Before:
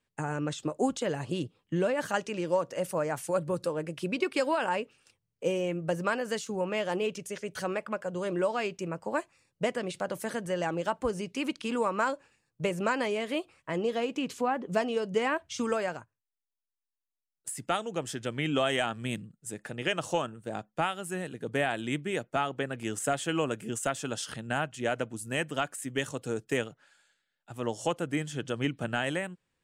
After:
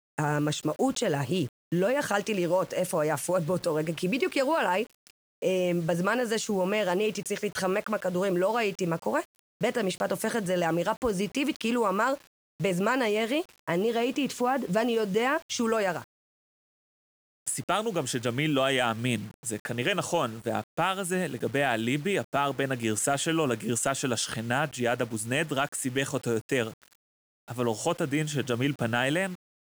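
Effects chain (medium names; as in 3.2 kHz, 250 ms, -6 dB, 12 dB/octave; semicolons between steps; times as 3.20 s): in parallel at -1.5 dB: compressor with a negative ratio -33 dBFS, ratio -1; on the sum: word length cut 8-bit, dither none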